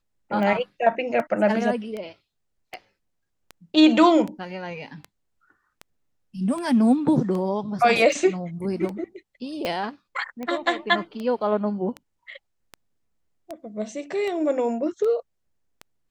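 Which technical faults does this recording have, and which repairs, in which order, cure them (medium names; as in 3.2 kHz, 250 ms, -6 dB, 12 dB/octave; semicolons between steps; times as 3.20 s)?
tick 78 rpm -20 dBFS
9.65 s: pop -14 dBFS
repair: de-click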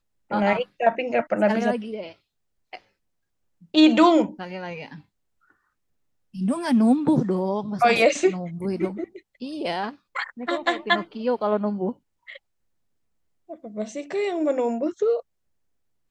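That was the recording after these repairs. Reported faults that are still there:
9.65 s: pop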